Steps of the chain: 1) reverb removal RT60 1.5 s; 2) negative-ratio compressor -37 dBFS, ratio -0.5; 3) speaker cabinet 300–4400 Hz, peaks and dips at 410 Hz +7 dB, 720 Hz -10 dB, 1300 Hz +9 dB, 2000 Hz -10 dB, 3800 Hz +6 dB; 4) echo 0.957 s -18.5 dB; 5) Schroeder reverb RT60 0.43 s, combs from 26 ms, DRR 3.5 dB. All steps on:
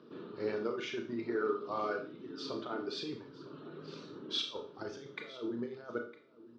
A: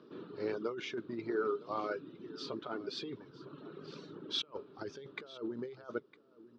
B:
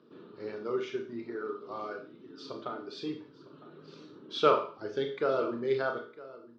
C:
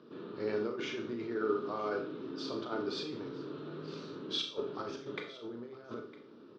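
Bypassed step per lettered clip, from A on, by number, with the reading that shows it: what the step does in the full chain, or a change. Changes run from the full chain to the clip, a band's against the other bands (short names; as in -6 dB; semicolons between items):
5, loudness change -1.5 LU; 2, crest factor change +7.0 dB; 1, 125 Hz band +2.5 dB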